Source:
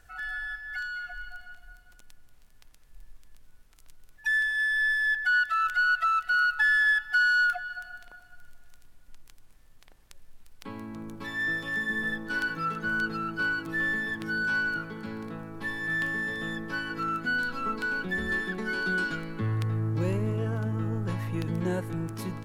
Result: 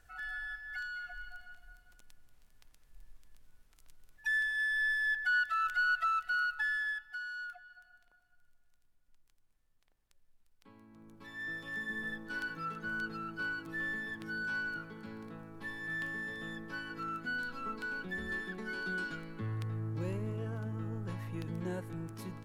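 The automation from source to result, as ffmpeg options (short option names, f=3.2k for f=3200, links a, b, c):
-af "volume=4dB,afade=t=out:st=6.06:d=1.15:silence=0.223872,afade=t=in:st=10.89:d=0.92:silence=0.316228"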